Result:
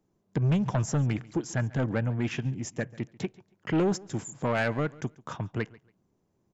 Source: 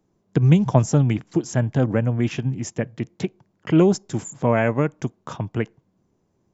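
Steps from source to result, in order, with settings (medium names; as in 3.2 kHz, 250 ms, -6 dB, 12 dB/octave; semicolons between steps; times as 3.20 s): dynamic bell 1.7 kHz, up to +7 dB, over -42 dBFS, Q 1.3; saturation -14.5 dBFS, distortion -11 dB; feedback delay 140 ms, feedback 23%, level -22 dB; trim -5.5 dB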